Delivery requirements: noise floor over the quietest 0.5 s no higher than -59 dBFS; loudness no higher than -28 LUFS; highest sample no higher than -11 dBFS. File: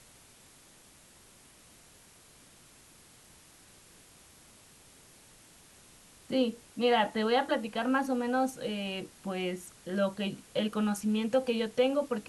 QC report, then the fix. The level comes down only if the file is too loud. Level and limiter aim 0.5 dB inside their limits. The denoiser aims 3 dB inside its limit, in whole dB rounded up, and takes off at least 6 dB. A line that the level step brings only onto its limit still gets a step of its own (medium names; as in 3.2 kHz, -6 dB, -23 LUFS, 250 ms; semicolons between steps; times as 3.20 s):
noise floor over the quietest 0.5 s -58 dBFS: fail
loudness -31.0 LUFS: pass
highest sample -15.0 dBFS: pass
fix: noise reduction 6 dB, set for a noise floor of -58 dBFS